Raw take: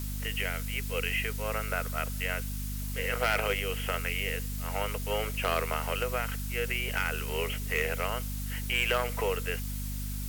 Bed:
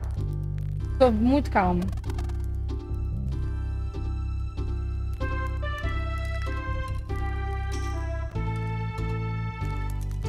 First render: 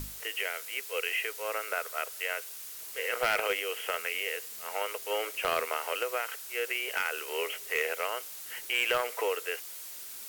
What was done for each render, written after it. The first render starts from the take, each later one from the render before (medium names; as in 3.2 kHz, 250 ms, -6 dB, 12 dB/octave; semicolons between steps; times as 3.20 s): hum notches 50/100/150/200/250 Hz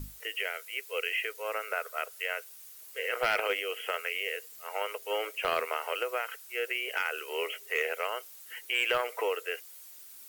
noise reduction 10 dB, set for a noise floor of -44 dBFS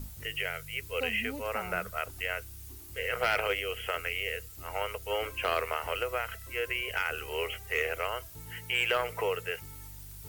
add bed -19 dB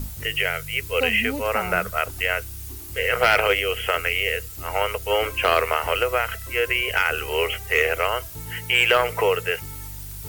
trim +10.5 dB